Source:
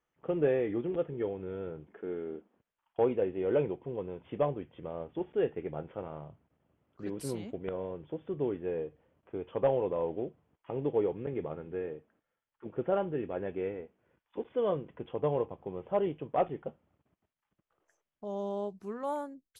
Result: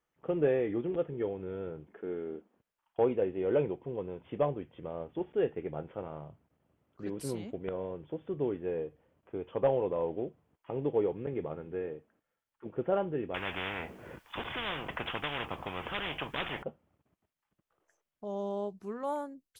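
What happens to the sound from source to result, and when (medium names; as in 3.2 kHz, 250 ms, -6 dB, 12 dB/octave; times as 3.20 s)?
13.34–16.63 s: spectrum-flattening compressor 10:1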